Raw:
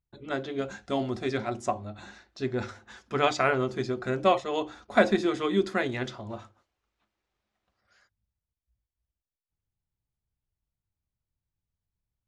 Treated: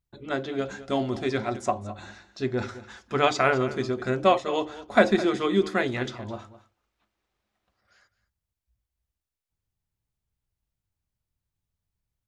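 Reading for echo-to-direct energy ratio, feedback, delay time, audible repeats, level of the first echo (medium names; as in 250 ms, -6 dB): -16.0 dB, no regular repeats, 210 ms, 1, -16.0 dB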